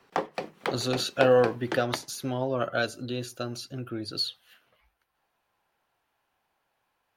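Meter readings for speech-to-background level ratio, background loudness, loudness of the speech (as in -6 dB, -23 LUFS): 7.0 dB, -35.5 LUFS, -28.5 LUFS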